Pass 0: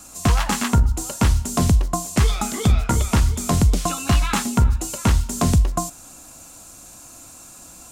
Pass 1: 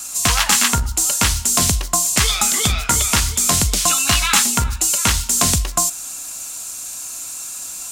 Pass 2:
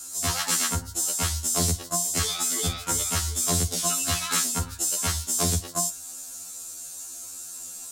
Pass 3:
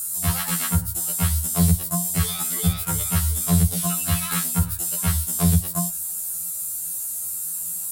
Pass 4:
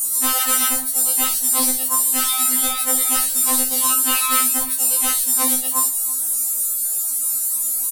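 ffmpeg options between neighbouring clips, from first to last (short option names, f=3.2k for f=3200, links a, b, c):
-af "tiltshelf=f=1.1k:g=-9.5,acontrast=41,volume=-1dB"
-af "equalizer=f=400:t=o:w=0.67:g=6,equalizer=f=1k:t=o:w=0.67:g=-4,equalizer=f=2.5k:t=o:w=0.67:g=-7,afftfilt=real='re*2*eq(mod(b,4),0)':imag='im*2*eq(mod(b,4),0)':win_size=2048:overlap=0.75,volume=-6dB"
-filter_complex "[0:a]acrossover=split=4100[a][b];[b]acompressor=threshold=-36dB:ratio=4:attack=1:release=60[c];[a][c]amix=inputs=2:normalize=0,lowshelf=f=220:t=q:w=3:g=7,aexciter=amount=4.1:drive=9.5:freq=8.8k"
-filter_complex "[0:a]asplit=2[a][b];[b]aecho=0:1:51|328:0.299|0.106[c];[a][c]amix=inputs=2:normalize=0,afftfilt=real='re*3.46*eq(mod(b,12),0)':imag='im*3.46*eq(mod(b,12),0)':win_size=2048:overlap=0.75,volume=4.5dB"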